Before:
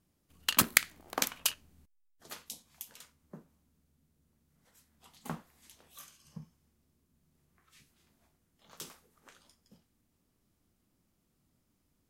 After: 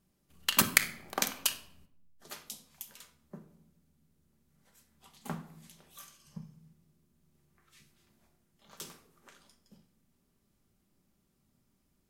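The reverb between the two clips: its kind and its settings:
rectangular room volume 1,900 cubic metres, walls furnished, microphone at 1.2 metres

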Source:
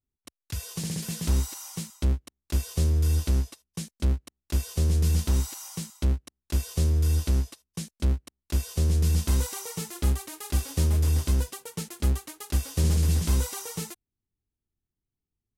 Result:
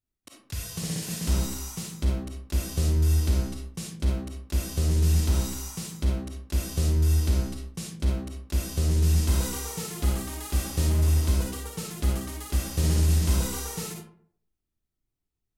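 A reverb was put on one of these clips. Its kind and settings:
comb and all-pass reverb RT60 0.6 s, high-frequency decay 0.5×, pre-delay 10 ms, DRR −1.5 dB
level −1.5 dB

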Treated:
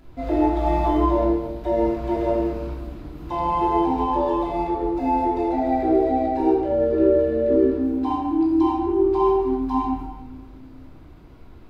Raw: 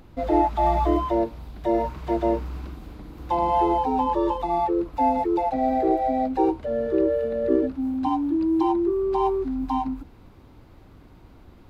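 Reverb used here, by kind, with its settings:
rectangular room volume 790 cubic metres, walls mixed, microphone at 3 metres
level −5.5 dB

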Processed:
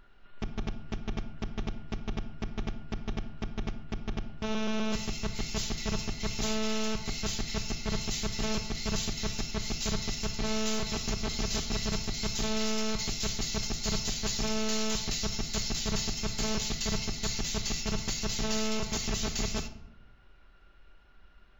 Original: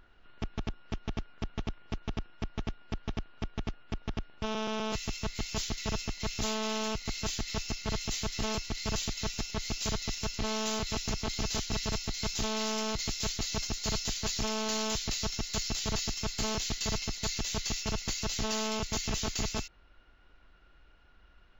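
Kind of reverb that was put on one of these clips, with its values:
rectangular room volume 2,000 cubic metres, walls furnished, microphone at 1.2 metres

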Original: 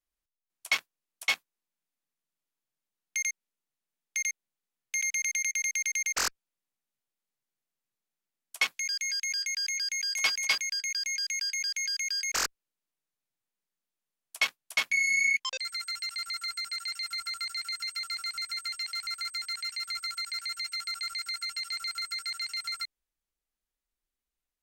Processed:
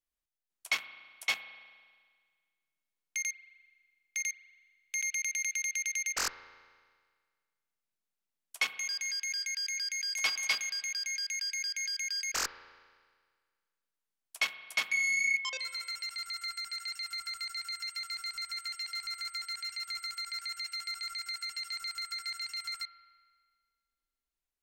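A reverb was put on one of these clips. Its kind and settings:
spring reverb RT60 1.7 s, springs 35 ms, chirp 30 ms, DRR 12 dB
level −3.5 dB

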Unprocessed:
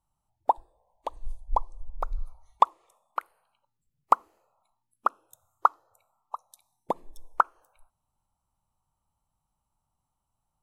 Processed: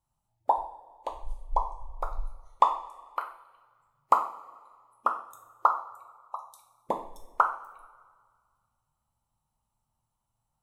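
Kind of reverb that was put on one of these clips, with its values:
coupled-rooms reverb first 0.44 s, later 1.8 s, from −18 dB, DRR 1.5 dB
level −2.5 dB

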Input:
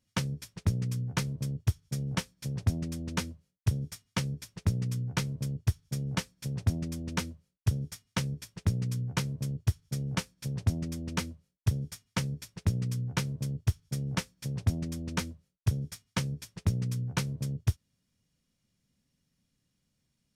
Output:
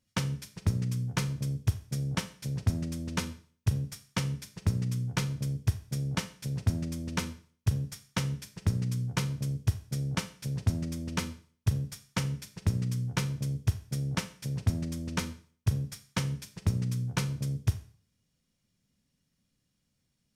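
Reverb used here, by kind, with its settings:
four-comb reverb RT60 0.45 s, combs from 29 ms, DRR 11 dB

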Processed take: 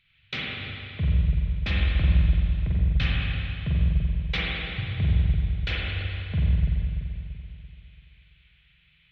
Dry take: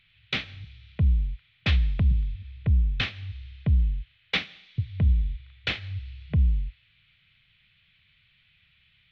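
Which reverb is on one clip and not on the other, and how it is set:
spring reverb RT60 2.8 s, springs 42/48 ms, chirp 65 ms, DRR −6 dB
level −5 dB

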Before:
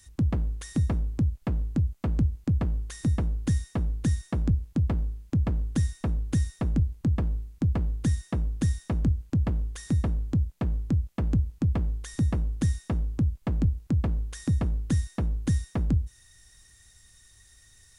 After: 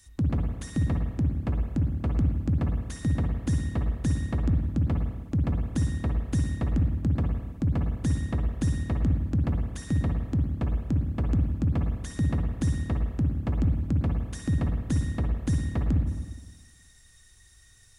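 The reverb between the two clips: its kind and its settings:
spring reverb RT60 1.3 s, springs 52/59 ms, chirp 60 ms, DRR 2.5 dB
level −1.5 dB

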